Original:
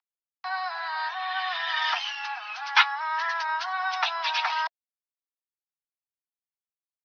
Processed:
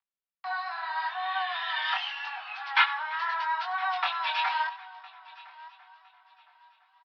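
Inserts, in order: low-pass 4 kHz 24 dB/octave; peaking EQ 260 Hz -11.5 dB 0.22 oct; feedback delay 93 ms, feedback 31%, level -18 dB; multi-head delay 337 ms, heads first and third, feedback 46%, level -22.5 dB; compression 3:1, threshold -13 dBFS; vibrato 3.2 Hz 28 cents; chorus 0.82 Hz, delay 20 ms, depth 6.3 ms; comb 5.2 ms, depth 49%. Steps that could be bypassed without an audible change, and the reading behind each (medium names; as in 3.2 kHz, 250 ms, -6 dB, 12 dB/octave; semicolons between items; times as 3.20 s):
peaking EQ 260 Hz: input has nothing below 600 Hz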